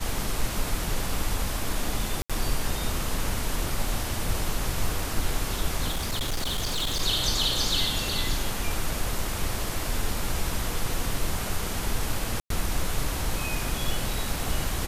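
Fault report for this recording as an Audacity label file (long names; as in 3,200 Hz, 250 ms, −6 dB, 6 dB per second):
2.220000	2.300000	drop-out 76 ms
5.900000	7.020000	clipping −23.5 dBFS
12.400000	12.500000	drop-out 103 ms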